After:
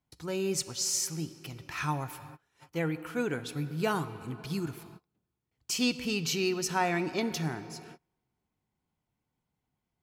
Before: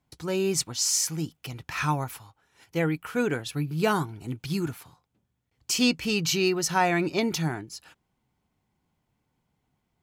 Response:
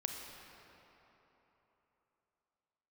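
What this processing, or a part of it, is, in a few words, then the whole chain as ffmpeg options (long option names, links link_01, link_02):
keyed gated reverb: -filter_complex "[0:a]asplit=3[link_01][link_02][link_03];[1:a]atrim=start_sample=2205[link_04];[link_02][link_04]afir=irnorm=-1:irlink=0[link_05];[link_03]apad=whole_len=442056[link_06];[link_05][link_06]sidechaingate=range=-33dB:threshold=-55dB:ratio=16:detection=peak,volume=-6dB[link_07];[link_01][link_07]amix=inputs=2:normalize=0,volume=-8.5dB"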